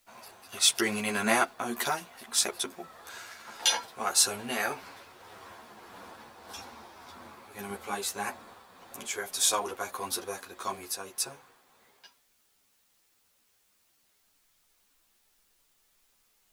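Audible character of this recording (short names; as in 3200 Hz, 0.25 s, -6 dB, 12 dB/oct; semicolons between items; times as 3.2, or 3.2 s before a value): tremolo triangle 1.7 Hz, depth 45%; a quantiser's noise floor 12-bit, dither triangular; a shimmering, thickened sound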